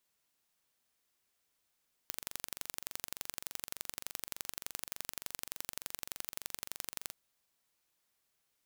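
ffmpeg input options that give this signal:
-f lavfi -i "aevalsrc='0.316*eq(mod(n,1885),0)*(0.5+0.5*eq(mod(n,3770),0))':d=5.03:s=44100"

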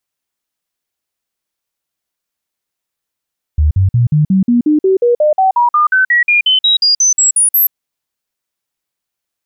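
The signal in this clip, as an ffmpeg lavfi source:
-f lavfi -i "aevalsrc='0.447*clip(min(mod(t,0.18),0.13-mod(t,0.18))/0.005,0,1)*sin(2*PI*75.6*pow(2,floor(t/0.18)/3)*mod(t,0.18))':d=4.14:s=44100"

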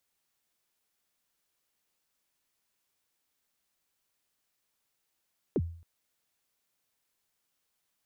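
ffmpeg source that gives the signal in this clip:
-f lavfi -i "aevalsrc='0.0794*pow(10,-3*t/0.51)*sin(2*PI*(490*0.046/log(84/490)*(exp(log(84/490)*min(t,0.046)/0.046)-1)+84*max(t-0.046,0)))':d=0.27:s=44100"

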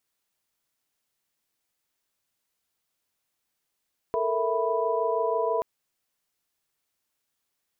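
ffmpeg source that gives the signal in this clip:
-f lavfi -i "aevalsrc='0.0376*(sin(2*PI*440*t)+sin(2*PI*466.16*t)+sin(2*PI*659.26*t)+sin(2*PI*987.77*t))':d=1.48:s=44100"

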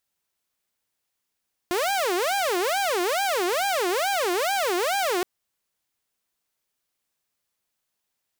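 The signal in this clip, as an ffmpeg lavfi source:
-f lavfi -i "aevalsrc='0.106*(2*mod((576*t-228/(2*PI*2.3)*sin(2*PI*2.3*t)),1)-1)':d=3.52:s=44100"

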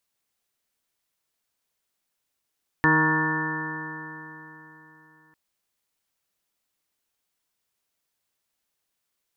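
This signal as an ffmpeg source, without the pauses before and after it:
-f lavfi -i "aevalsrc='0.0631*pow(10,-3*t/3.58)*sin(2*PI*156.04*t)+0.0794*pow(10,-3*t/3.58)*sin(2*PI*312.32*t)+0.0316*pow(10,-3*t/3.58)*sin(2*PI*469.09*t)+0.0075*pow(10,-3*t/3.58)*sin(2*PI*626.59*t)+0.0133*pow(10,-3*t/3.58)*sin(2*PI*785.05*t)+0.0668*pow(10,-3*t/3.58)*sin(2*PI*944.72*t)+0.0501*pow(10,-3*t/3.58)*sin(2*PI*1105.82*t)+0.0178*pow(10,-3*t/3.58)*sin(2*PI*1268.6*t)+0.0398*pow(10,-3*t/3.58)*sin(2*PI*1433.26*t)+0.015*pow(10,-3*t/3.58)*sin(2*PI*1600.05*t)+0.119*pow(10,-3*t/3.58)*sin(2*PI*1769.16*t)':d=2.5:s=44100"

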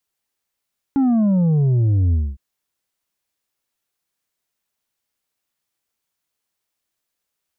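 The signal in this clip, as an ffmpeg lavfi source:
-f lavfi -i "aevalsrc='0.2*clip((1.41-t)/0.24,0,1)*tanh(1.78*sin(2*PI*280*1.41/log(65/280)*(exp(log(65/280)*t/1.41)-1)))/tanh(1.78)':d=1.41:s=44100"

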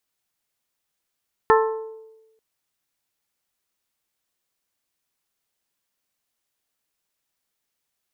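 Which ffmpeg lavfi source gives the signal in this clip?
-f lavfi -i "aevalsrc='0.224*pow(10,-3*t/1.08)*sin(2*PI*442*t)+0.178*pow(10,-3*t/0.665)*sin(2*PI*884*t)+0.141*pow(10,-3*t/0.585)*sin(2*PI*1060.8*t)+0.112*pow(10,-3*t/0.501)*sin(2*PI*1326*t)+0.0891*pow(10,-3*t/0.409)*sin(2*PI*1768*t)':d=0.89:s=44100"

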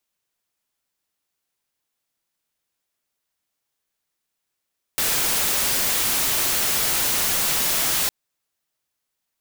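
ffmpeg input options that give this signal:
-f lavfi -i "anoisesrc=c=white:a=0.146:d=3.11:r=44100:seed=1"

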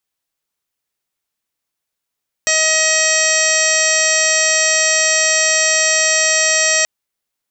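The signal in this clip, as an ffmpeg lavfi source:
-f lavfi -i "aevalsrc='0.0891*sin(2*PI*632*t)+0.0316*sin(2*PI*1264*t)+0.126*sin(2*PI*1896*t)+0.0841*sin(2*PI*2528*t)+0.0501*sin(2*PI*3160*t)+0.0335*sin(2*PI*3792*t)+0.0668*sin(2*PI*4424*t)+0.0316*sin(2*PI*5056*t)+0.133*sin(2*PI*5688*t)+0.0668*sin(2*PI*6320*t)+0.0282*sin(2*PI*6952*t)+0.112*sin(2*PI*7584*t)':d=4.38:s=44100"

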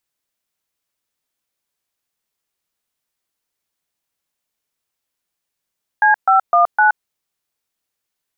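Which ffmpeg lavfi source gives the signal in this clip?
-f lavfi -i "aevalsrc='0.266*clip(min(mod(t,0.255),0.123-mod(t,0.255))/0.002,0,1)*(eq(floor(t/0.255),0)*(sin(2*PI*852*mod(t,0.255))+sin(2*PI*1633*mod(t,0.255)))+eq(floor(t/0.255),1)*(sin(2*PI*770*mod(t,0.255))+sin(2*PI*1336*mod(t,0.255)))+eq(floor(t/0.255),2)*(sin(2*PI*697*mod(t,0.255))+sin(2*PI*1209*mod(t,0.255)))+eq(floor(t/0.255),3)*(sin(2*PI*852*mod(t,0.255))+sin(2*PI*1477*mod(t,0.255))))':d=1.02:s=44100"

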